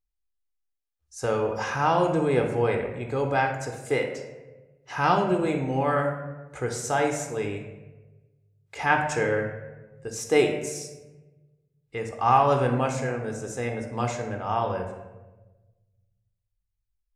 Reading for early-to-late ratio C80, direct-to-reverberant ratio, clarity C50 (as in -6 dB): 8.5 dB, 3.5 dB, 6.0 dB